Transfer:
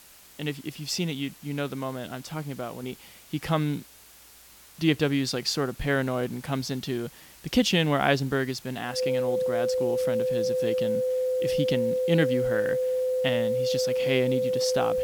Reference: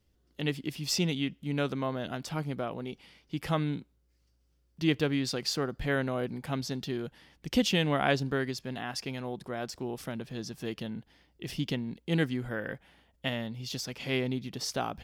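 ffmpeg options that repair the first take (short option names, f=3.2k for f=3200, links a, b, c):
-af "bandreject=f=510:w=30,afwtdn=0.0028,asetnsamples=n=441:p=0,asendcmd='2.83 volume volume -4dB',volume=0dB"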